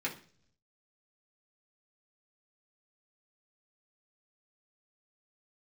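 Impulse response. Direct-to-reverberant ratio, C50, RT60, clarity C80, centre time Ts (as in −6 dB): −4.5 dB, 12.0 dB, 0.50 s, 17.0 dB, 15 ms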